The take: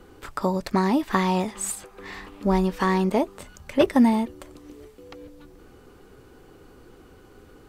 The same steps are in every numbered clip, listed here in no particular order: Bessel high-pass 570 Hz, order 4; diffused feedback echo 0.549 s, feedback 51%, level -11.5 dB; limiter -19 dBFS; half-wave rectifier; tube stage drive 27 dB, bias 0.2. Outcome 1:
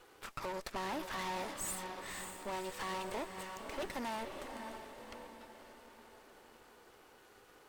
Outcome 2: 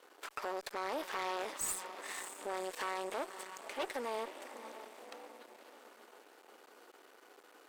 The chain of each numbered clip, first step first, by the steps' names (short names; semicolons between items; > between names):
Bessel high-pass > half-wave rectifier > limiter > diffused feedback echo > tube stage; limiter > diffused feedback echo > half-wave rectifier > Bessel high-pass > tube stage